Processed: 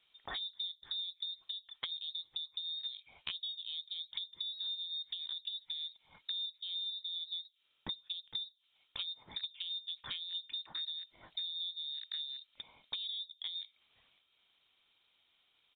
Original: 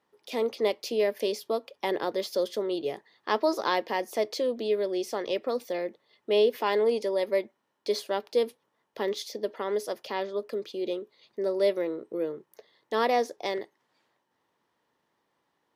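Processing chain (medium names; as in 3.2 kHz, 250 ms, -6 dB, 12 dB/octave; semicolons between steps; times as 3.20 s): rattle on loud lows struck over -46 dBFS, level -35 dBFS; high-pass 120 Hz 24 dB/octave; bass shelf 170 Hz -7 dB; low-pass that closes with the level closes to 400 Hz, closed at -26.5 dBFS; compression 6:1, threshold -42 dBFS, peak gain reduction 17.5 dB; pitch shift -2 st; frequency inversion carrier 4 kHz; trim +3 dB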